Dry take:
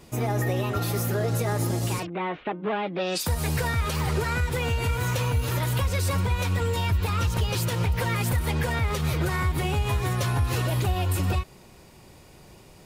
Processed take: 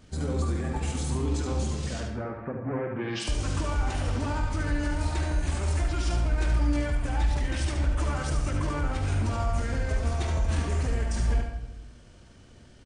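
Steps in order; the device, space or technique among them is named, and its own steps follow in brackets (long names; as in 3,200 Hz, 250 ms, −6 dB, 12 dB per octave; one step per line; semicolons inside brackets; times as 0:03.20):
monster voice (pitch shifter −8 semitones; low-shelf EQ 140 Hz +4 dB; single-tap delay 75 ms −6.5 dB; convolution reverb RT60 0.95 s, pre-delay 43 ms, DRR 6 dB)
level −5.5 dB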